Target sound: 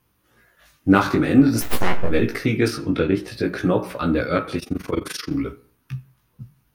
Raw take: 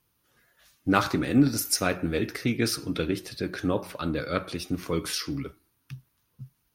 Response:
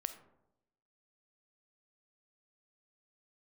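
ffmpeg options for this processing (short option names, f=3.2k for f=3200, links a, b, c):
-filter_complex "[0:a]asplit=3[a][b][c];[a]afade=t=out:st=1.6:d=0.02[d];[b]aeval=exprs='abs(val(0))':c=same,afade=t=in:st=1.6:d=0.02,afade=t=out:st=2.09:d=0.02[e];[c]afade=t=in:st=2.09:d=0.02[f];[d][e][f]amix=inputs=3:normalize=0,asplit=2[g][h];[h]alimiter=limit=-15dB:level=0:latency=1:release=187,volume=-2dB[i];[g][i]amix=inputs=2:normalize=0,asettb=1/sr,asplit=3[j][k][l];[j]atrim=end=2.684[m];[k]atrim=start=2.68:end=3.28,asetpts=PTS-STARTPTS,afade=t=in:d=0.004:c=qsin,afade=t=out:st=0.596:d=0.004:c=qsin,lowpass=f=3.6k:p=1[n];[l]atrim=start=3.276[o];[m][n]acrossfade=d=0.004:c1=hsin:c2=qsin[p];[p][o]acrossfade=d=0.004:c1=qsin:c2=hsin,asplit=2[q][r];[1:a]atrim=start_sample=2205,asetrate=88200,aresample=44100,lowpass=3k[s];[r][s]afir=irnorm=-1:irlink=0,volume=6dB[t];[q][t]amix=inputs=2:normalize=0,flanger=delay=16:depth=4.7:speed=0.51,asettb=1/sr,asplit=3[u][v][w];[u]atrim=end=4.594[x];[v]atrim=start=4.59:end=5.31,asetpts=PTS-STARTPTS,afade=t=in:d=0.004:c=qsin,afade=t=out:st=0.716:d=0.004:c=qsin,tremolo=f=23:d=0.889[y];[w]atrim=start=5.306[z];[x][y]acrossfade=d=0.004:c1=hsin:c2=qsin[aa];[aa][z]acrossfade=d=0.004:c1=qsin:c2=hsin,volume=1dB"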